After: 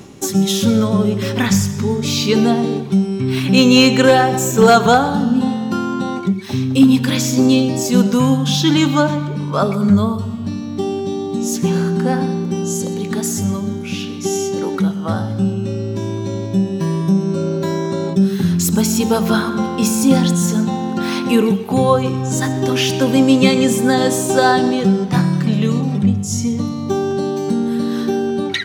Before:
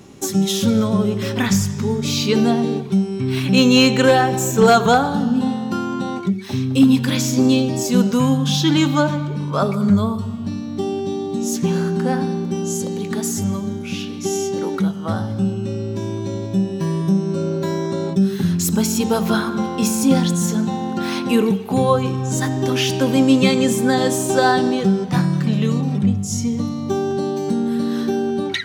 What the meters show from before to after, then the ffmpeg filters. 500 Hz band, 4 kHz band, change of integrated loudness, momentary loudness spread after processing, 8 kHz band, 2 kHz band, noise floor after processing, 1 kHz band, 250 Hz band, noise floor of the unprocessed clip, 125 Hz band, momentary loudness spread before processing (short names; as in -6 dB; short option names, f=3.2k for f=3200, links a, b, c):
+2.5 dB, +2.5 dB, +2.5 dB, 9 LU, +2.5 dB, +2.5 dB, -24 dBFS, +2.5 dB, +2.5 dB, -27 dBFS, +2.0 dB, 9 LU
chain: -af "areverse,acompressor=mode=upward:threshold=-25dB:ratio=2.5,areverse,aecho=1:1:127:0.133,volume=2.5dB"